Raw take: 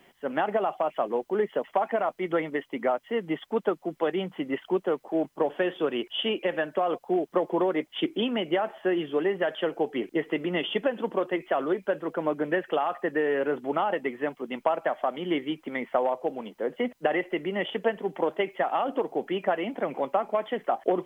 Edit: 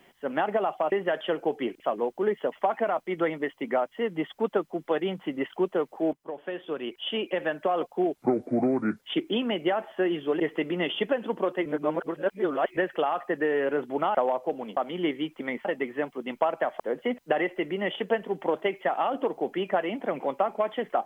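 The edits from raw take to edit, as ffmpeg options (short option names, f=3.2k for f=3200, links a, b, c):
-filter_complex "[0:a]asplit=13[a][b][c][d][e][f][g][h][i][j][k][l][m];[a]atrim=end=0.922[n];[b]atrim=start=9.258:end=10.142[o];[c]atrim=start=0.918:end=5.25,asetpts=PTS-STARTPTS,afade=t=out:st=4.328:d=0.004:c=hsin:silence=0.188365[p];[d]atrim=start=5.25:end=7.284,asetpts=PTS-STARTPTS,afade=t=in:d=1.43:silence=0.188365[q];[e]atrim=start=7.28:end=7.88,asetpts=PTS-STARTPTS,asetrate=30870,aresample=44100[r];[f]atrim=start=7.876:end=9.262[s];[g]atrim=start=10.138:end=11.402[t];[h]atrim=start=11.398:end=12.512,asetpts=PTS-STARTPTS,areverse[u];[i]atrim=start=12.508:end=13.892[v];[j]atrim=start=15.918:end=16.542[w];[k]atrim=start=15.038:end=15.922[x];[l]atrim=start=13.888:end=15.042[y];[m]atrim=start=16.538[z];[n][o]acrossfade=d=0.004:c1=hsin:c2=hsin[aa];[p][q]concat=n=2:v=0:a=1[ab];[aa][ab]acrossfade=d=0.004:c1=hsin:c2=hsin[ac];[ac][r]acrossfade=d=0.004:c1=hsin:c2=hsin[ad];[ad][s]acrossfade=d=0.004:c1=hsin:c2=hsin[ae];[ae][t]acrossfade=d=0.004:c1=hsin:c2=hsin[af];[af][u]acrossfade=d=0.004:c1=hsin:c2=hsin[ag];[ag][v]acrossfade=d=0.004:c1=hsin:c2=hsin[ah];[ah][w]acrossfade=d=0.004:c1=hsin:c2=hsin[ai];[ai][x]acrossfade=d=0.004:c1=hsin:c2=hsin[aj];[aj][y]acrossfade=d=0.004:c1=hsin:c2=hsin[ak];[ak][z]acrossfade=d=0.004:c1=hsin:c2=hsin"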